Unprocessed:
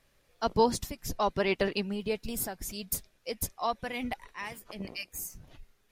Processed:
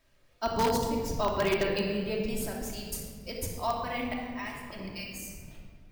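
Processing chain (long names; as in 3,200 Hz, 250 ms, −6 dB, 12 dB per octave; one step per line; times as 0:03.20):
rectangular room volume 2,500 cubic metres, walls mixed, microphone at 2.8 metres
in parallel at −5.5 dB: wrap-around overflow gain 14.5 dB
on the sum: bad sample-rate conversion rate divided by 2×, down filtered, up hold
level −7 dB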